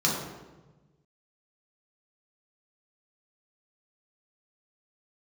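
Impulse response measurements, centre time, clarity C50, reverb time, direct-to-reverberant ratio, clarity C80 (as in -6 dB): 64 ms, 1.5 dB, 1.2 s, -5.0 dB, 4.0 dB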